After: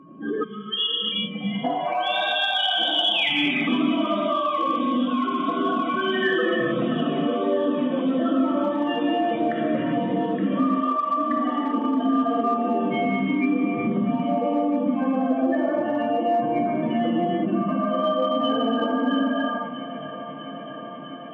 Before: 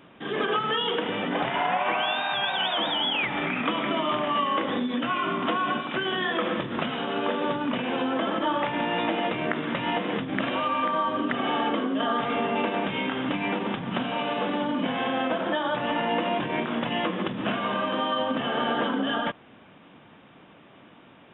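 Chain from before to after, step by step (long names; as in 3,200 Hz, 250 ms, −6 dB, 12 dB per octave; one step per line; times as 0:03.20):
expanding power law on the bin magnitudes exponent 3.4
mains-hum notches 60/120/180/240/300/360/420/480 Hz
reverb whose tail is shaped and stops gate 420 ms flat, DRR −5 dB
gain on a spectral selection 0:00.43–0:01.64, 220–2,000 Hz −22 dB
on a send: feedback echo with a high-pass in the loop 651 ms, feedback 83%, high-pass 270 Hz, level −18.5 dB
on the sum: downward compressor 2 to 1, threshold −28 dBFS, peak gain reduction 8 dB
steady tone 1,100 Hz −53 dBFS
in parallel at −11 dB: asymmetric clip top −21.5 dBFS
on the sum: high-pass filter 100 Hz
parametric band 920 Hz −12.5 dB 0.36 octaves
level +4 dB
MP3 112 kbit/s 22,050 Hz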